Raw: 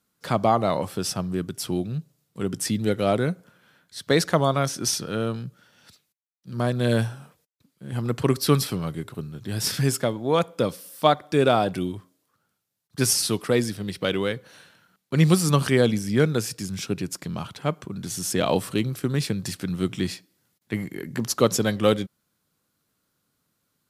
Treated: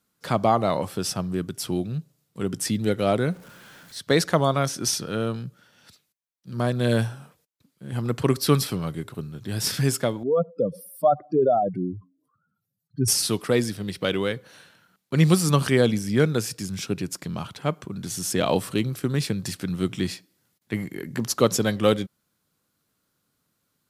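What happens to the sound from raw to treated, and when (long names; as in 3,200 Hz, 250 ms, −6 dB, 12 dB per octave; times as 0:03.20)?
0:03.30–0:03.98: converter with a step at zero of −44.5 dBFS
0:10.23–0:13.08: expanding power law on the bin magnitudes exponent 2.8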